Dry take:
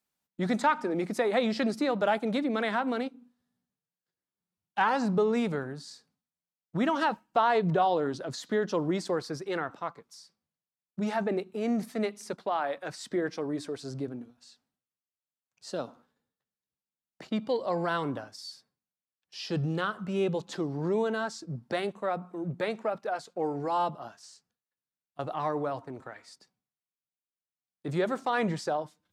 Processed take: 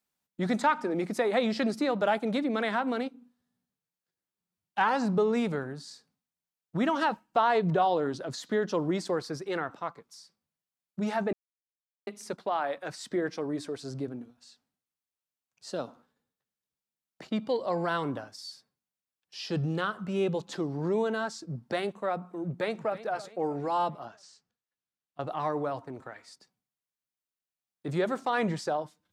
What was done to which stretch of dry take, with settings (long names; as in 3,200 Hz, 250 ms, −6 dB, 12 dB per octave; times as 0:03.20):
0:11.33–0:12.07: silence
0:22.42–0:22.99: delay throw 320 ms, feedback 45%, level −15 dB
0:24.05–0:25.27: high-frequency loss of the air 57 metres